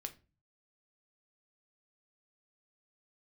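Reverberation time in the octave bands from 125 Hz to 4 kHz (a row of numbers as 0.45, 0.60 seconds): 0.75, 0.50, 0.35, 0.30, 0.25, 0.25 seconds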